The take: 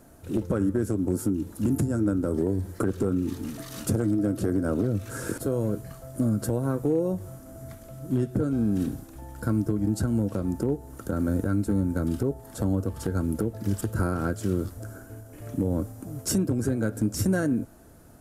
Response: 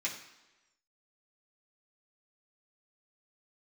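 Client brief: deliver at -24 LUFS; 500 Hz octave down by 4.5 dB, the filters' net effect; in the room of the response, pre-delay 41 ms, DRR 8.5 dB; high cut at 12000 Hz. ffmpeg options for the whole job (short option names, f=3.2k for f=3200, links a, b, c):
-filter_complex "[0:a]lowpass=12k,equalizer=f=500:t=o:g=-6,asplit=2[a][b];[1:a]atrim=start_sample=2205,adelay=41[c];[b][c]afir=irnorm=-1:irlink=0,volume=-12.5dB[d];[a][d]amix=inputs=2:normalize=0,volume=4.5dB"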